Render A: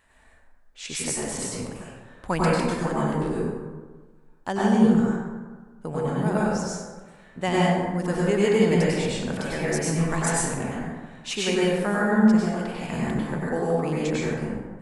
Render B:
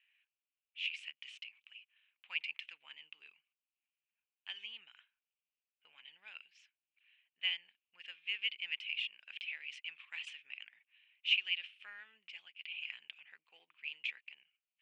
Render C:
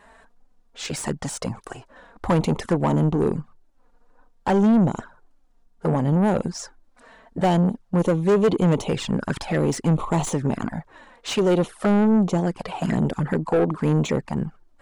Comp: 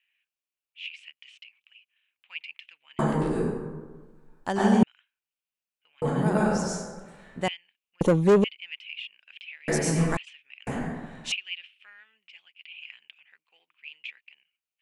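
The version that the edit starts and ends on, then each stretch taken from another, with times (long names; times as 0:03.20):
B
0:02.99–0:04.83: punch in from A
0:06.02–0:07.48: punch in from A
0:08.01–0:08.44: punch in from C
0:09.68–0:10.17: punch in from A
0:10.67–0:11.32: punch in from A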